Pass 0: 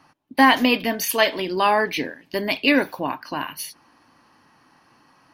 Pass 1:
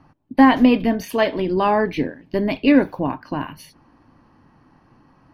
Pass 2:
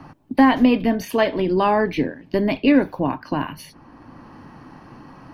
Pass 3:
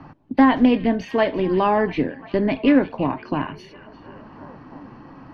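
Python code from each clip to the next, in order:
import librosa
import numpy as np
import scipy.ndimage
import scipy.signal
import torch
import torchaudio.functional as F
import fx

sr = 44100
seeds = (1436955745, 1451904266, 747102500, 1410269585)

y1 = fx.tilt_eq(x, sr, slope=-4.0)
y1 = F.gain(torch.from_numpy(y1), -1.0).numpy()
y2 = fx.band_squash(y1, sr, depth_pct=40)
y3 = fx.air_absorb(y2, sr, metres=160.0)
y3 = fx.echo_stepped(y3, sr, ms=346, hz=3400.0, octaves=-0.7, feedback_pct=70, wet_db=-12)
y3 = fx.doppler_dist(y3, sr, depth_ms=0.11)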